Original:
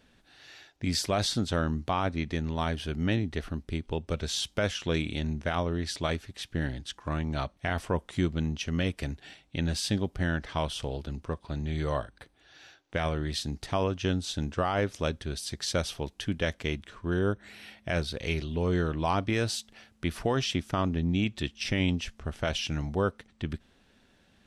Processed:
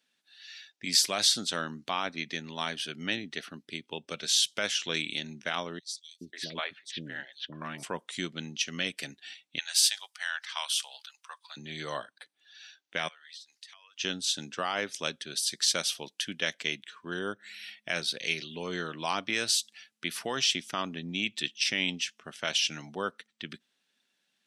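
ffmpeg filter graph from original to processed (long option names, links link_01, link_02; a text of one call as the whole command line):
ffmpeg -i in.wav -filter_complex "[0:a]asettb=1/sr,asplit=3[link_01][link_02][link_03];[link_01]atrim=end=5.794[link_04];[link_02]atrim=start=5.79:end=7.83,asetpts=PTS-STARTPTS,afade=type=in:duration=0.004:curve=qsin,afade=type=out:start_time=2.036:duration=0.004:curve=qsin,equalizer=frequency=9300:width=0.49:gain=-7.5,acrossover=split=460|4400[link_05][link_06][link_07];[link_05]adelay=420[link_08];[link_06]adelay=540[link_09];[link_08][link_09][link_07]amix=inputs=3:normalize=0,atrim=end_sample=89964[link_10];[link_03]atrim=start=7.826[link_11];[link_04][link_10]acrossfade=duration=0.004:curve1=hsin:curve2=qsin[link_12];[link_12][link_11]acrossfade=duration=0.004:curve1=qsin:curve2=hsin,asettb=1/sr,asplit=3[link_13][link_14][link_15];[link_13]atrim=end=9.584[link_16];[link_14]atrim=start=9.58:end=11.57,asetpts=PTS-STARTPTS,afade=type=in:duration=0.004:curve=qsin,afade=type=out:start_time=1.986:duration=0.004:curve=qsin,highpass=frequency=840:width=0.5412,highpass=frequency=840:width=1.3066,highshelf=frequency=8800:gain=8.5[link_17];[link_15]atrim=start=11.566[link_18];[link_16][link_17]acrossfade=duration=0.004:curve1=hsin:curve2=qsin[link_19];[link_19][link_18]acrossfade=duration=0.004:curve1=qsin:curve2=hsin,asettb=1/sr,asplit=3[link_20][link_21][link_22];[link_20]atrim=end=13.084[link_23];[link_21]atrim=start=13.08:end=13.98,asetpts=PTS-STARTPTS,afade=type=in:duration=0.004:curve=qsin,afade=type=out:start_time=0.896:duration=0.004:curve=qsin,highpass=1300,acompressor=threshold=-49dB:ratio=10:attack=3.2:release=140:knee=1:detection=peak[link_24];[link_22]atrim=start=13.976[link_25];[link_23][link_24]acrossfade=duration=0.004:curve1=hsin:curve2=qsin[link_26];[link_26][link_25]acrossfade=duration=0.004:curve1=qsin:curve2=hsin,highpass=frequency=160:width=0.5412,highpass=frequency=160:width=1.3066,tiltshelf=frequency=1400:gain=-9,afftdn=noise_reduction=14:noise_floor=-51" out.wav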